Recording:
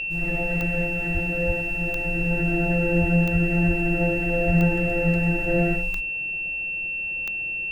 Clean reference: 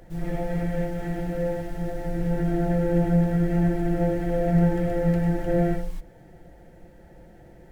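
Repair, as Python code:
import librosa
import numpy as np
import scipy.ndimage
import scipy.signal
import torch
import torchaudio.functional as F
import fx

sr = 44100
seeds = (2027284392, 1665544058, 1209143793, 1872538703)

y = fx.fix_declick_ar(x, sr, threshold=10.0)
y = fx.notch(y, sr, hz=2700.0, q=30.0)
y = fx.fix_deplosive(y, sr, at_s=(1.13, 1.46, 3.0, 3.32, 3.67, 4.46))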